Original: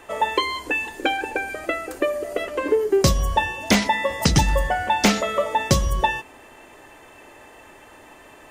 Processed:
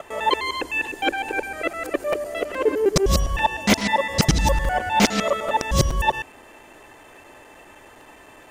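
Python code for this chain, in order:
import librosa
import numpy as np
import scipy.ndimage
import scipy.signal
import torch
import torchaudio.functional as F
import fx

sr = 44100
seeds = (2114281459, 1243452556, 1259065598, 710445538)

y = fx.local_reverse(x, sr, ms=102.0)
y = fx.buffer_crackle(y, sr, first_s=0.86, period_s=0.42, block=256, kind='repeat')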